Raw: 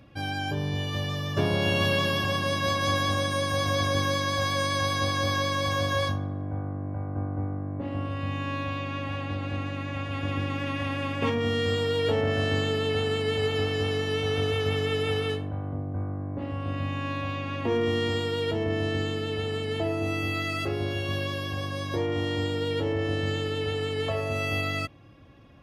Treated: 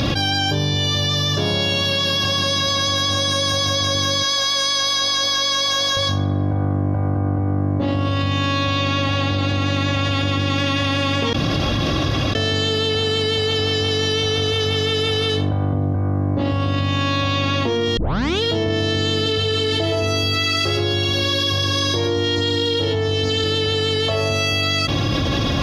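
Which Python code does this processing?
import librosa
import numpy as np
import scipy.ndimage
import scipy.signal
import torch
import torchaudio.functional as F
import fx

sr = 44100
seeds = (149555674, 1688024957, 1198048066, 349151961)

y = fx.highpass(x, sr, hz=730.0, slope=6, at=(4.23, 5.97))
y = fx.echo_single(y, sr, ms=120, db=-3.0, at=(19.14, 23.44))
y = fx.edit(y, sr, fx.room_tone_fill(start_s=11.33, length_s=1.02),
    fx.tape_start(start_s=17.97, length_s=0.46), tone=tone)
y = fx.band_shelf(y, sr, hz=4600.0, db=11.5, octaves=1.2)
y = fx.env_flatten(y, sr, amount_pct=100)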